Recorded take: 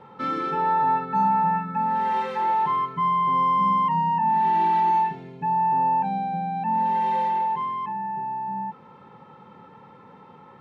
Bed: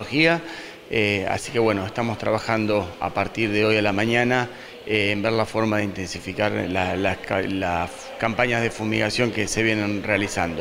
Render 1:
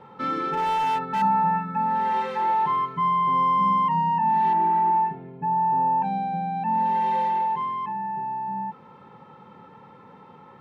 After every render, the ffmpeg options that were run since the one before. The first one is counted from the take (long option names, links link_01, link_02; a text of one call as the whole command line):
ffmpeg -i in.wav -filter_complex "[0:a]asettb=1/sr,asplit=3[link_01][link_02][link_03];[link_01]atrim=end=0.534[link_04];[link_02]atrim=start=0.53:end=1.22,asetpts=PTS-STARTPTS,afade=type=in:duration=0.004:curve=qsin,afade=type=out:start_time=0.686:duration=0.004:curve=qsin,asoftclip=type=hard:threshold=-21dB[link_05];[link_03]atrim=start=1.216[link_06];[link_04][link_05]acrossfade=duration=0.004:curve1=hsin:curve2=qsin[link_07];[link_07][link_06]acrossfade=duration=0.004:curve1=qsin:curve2=hsin,asettb=1/sr,asplit=3[link_08][link_09][link_10];[link_08]atrim=end=4.534[link_11];[link_09]atrim=start=4.53:end=6.02,asetpts=PTS-STARTPTS,afade=type=in:duration=0.004:curve=qsin,afade=type=out:start_time=1.486:duration=0.004:curve=qsin,lowpass=1500[link_12];[link_10]atrim=start=6.016[link_13];[link_11][link_12]acrossfade=duration=0.004:curve1=hsin:curve2=qsin[link_14];[link_14][link_13]acrossfade=duration=0.004:curve1=qsin:curve2=hsin" out.wav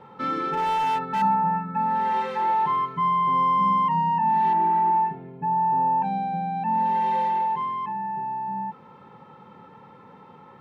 ffmpeg -i in.wav -filter_complex "[0:a]asplit=3[link_01][link_02][link_03];[link_01]afade=type=out:start_time=1.34:duration=0.02[link_04];[link_02]highshelf=frequency=2600:gain=-12,afade=type=in:start_time=1.34:duration=0.02,afade=type=out:start_time=1.74:duration=0.02[link_05];[link_03]afade=type=in:start_time=1.74:duration=0.02[link_06];[link_04][link_05][link_06]amix=inputs=3:normalize=0" out.wav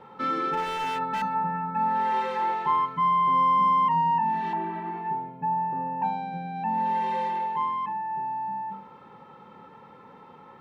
ffmpeg -i in.wav -af "equalizer=frequency=130:width=1.2:gain=-5,bandreject=frequency=98.12:width_type=h:width=4,bandreject=frequency=196.24:width_type=h:width=4,bandreject=frequency=294.36:width_type=h:width=4,bandreject=frequency=392.48:width_type=h:width=4,bandreject=frequency=490.6:width_type=h:width=4,bandreject=frequency=588.72:width_type=h:width=4,bandreject=frequency=686.84:width_type=h:width=4,bandreject=frequency=784.96:width_type=h:width=4,bandreject=frequency=883.08:width_type=h:width=4,bandreject=frequency=981.2:width_type=h:width=4,bandreject=frequency=1079.32:width_type=h:width=4" out.wav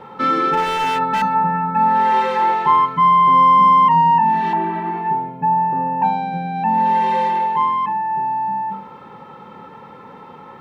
ffmpeg -i in.wav -af "volume=10dB" out.wav